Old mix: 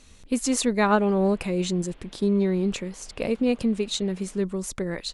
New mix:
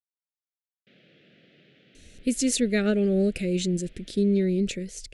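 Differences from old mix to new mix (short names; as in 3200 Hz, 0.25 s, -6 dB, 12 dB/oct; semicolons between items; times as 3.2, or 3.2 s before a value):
speech: entry +1.95 s; master: add Butterworth band-stop 980 Hz, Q 0.8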